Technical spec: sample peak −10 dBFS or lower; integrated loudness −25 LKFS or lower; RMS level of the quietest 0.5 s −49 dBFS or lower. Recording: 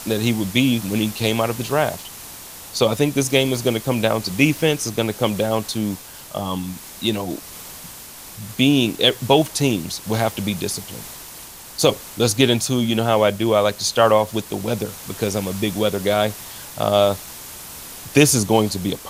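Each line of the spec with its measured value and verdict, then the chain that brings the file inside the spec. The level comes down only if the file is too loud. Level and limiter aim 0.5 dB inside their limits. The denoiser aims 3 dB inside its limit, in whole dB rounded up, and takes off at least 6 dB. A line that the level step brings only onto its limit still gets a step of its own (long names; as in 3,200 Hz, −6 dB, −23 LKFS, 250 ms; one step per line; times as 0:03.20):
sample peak −1.5 dBFS: out of spec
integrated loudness −20.0 LKFS: out of spec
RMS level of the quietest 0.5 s −39 dBFS: out of spec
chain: broadband denoise 8 dB, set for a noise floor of −39 dBFS
level −5.5 dB
brickwall limiter −10.5 dBFS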